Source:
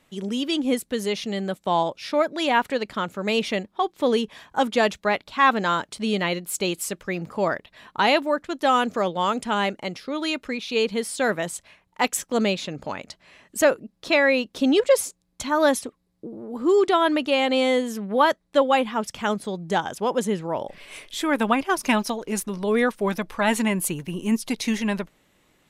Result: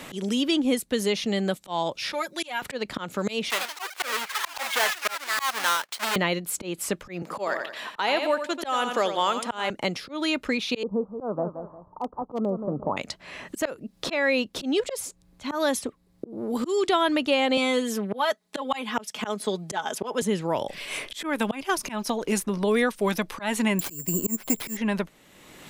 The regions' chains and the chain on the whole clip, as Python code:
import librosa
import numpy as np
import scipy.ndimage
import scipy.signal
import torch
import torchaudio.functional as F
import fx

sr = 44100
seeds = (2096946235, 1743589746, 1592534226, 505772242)

y = fx.chain(x, sr, fx.pre_emphasis(coefficient=0.9),
    fx.comb(ms=5.6, depth=0.91), at=(2.12, 2.62))
y = fx.chain(y, sr, fx.halfwave_hold(),
    fx.highpass(hz=1200.0, slope=12),
    fx.echo_pitch(ms=85, semitones=4, count=3, db_per_echo=-6.0), at=(3.5, 6.16))
y = fx.chain(y, sr, fx.highpass(hz=350.0, slope=12),
    fx.echo_feedback(ms=86, feedback_pct=25, wet_db=-9.5), at=(7.22, 9.7))
y = fx.chain(y, sr, fx.steep_lowpass(hz=1200.0, slope=72),
    fx.echo_feedback(ms=175, feedback_pct=22, wet_db=-15.0),
    fx.clip_hard(threshold_db=-14.5), at=(10.83, 12.97))
y = fx.chain(y, sr, fx.highpass(hz=290.0, slope=12),
    fx.comb(ms=4.7, depth=0.65), at=(17.57, 20.22))
y = fx.chain(y, sr, fx.lowpass(hz=1800.0, slope=6),
    fx.resample_bad(factor=6, down='none', up='zero_stuff'), at=(23.79, 24.77))
y = fx.auto_swell(y, sr, attack_ms=333.0)
y = fx.band_squash(y, sr, depth_pct=70)
y = y * librosa.db_to_amplitude(1.5)